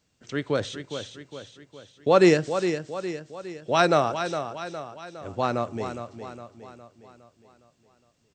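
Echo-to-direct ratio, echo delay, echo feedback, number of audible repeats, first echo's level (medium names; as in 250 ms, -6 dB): -8.0 dB, 411 ms, 50%, 5, -9.0 dB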